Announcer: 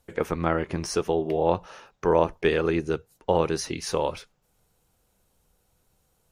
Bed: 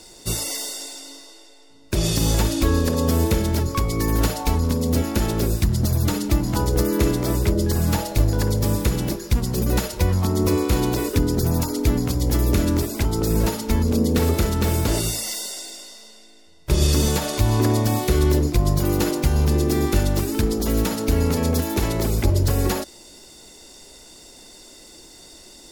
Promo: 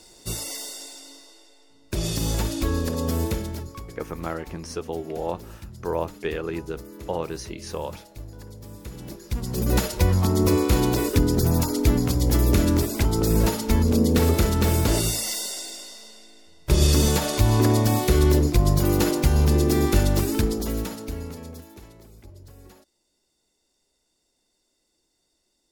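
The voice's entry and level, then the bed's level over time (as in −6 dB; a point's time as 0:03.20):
3.80 s, −6.0 dB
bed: 0:03.27 −5.5 dB
0:04.03 −21 dB
0:08.70 −21 dB
0:09.76 0 dB
0:20.33 0 dB
0:22.06 −27.5 dB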